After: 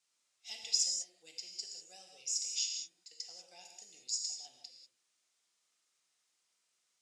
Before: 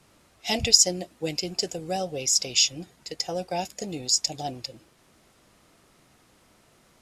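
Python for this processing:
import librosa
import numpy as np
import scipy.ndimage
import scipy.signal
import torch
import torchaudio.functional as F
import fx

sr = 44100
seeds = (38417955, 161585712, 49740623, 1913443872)

y = fx.bandpass_q(x, sr, hz=7700.0, q=1.3)
y = fx.air_absorb(y, sr, metres=54.0)
y = fx.rev_gated(y, sr, seeds[0], gate_ms=220, shape='flat', drr_db=1.5)
y = y * librosa.db_to_amplitude(-8.5)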